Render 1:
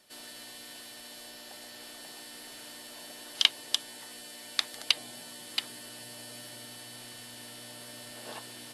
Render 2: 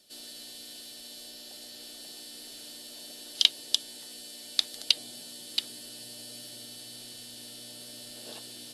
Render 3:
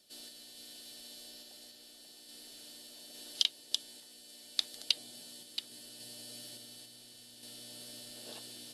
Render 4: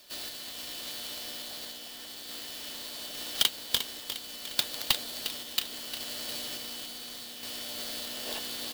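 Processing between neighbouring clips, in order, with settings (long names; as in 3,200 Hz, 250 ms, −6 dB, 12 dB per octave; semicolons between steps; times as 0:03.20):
octave-band graphic EQ 125/1,000/2,000/4,000 Hz −4/−11/−8/+5 dB; level +1 dB
sample-and-hold tremolo 3.5 Hz; level −3.5 dB
mid-hump overdrive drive 20 dB, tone 4,800 Hz, clips at −8.5 dBFS; on a send: repeating echo 354 ms, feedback 51%, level −10 dB; on the sum: converter with an unsteady clock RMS 0.027 ms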